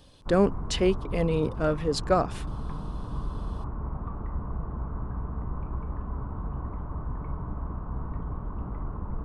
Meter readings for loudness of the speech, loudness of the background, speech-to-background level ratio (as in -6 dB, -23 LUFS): -26.5 LUFS, -36.0 LUFS, 9.5 dB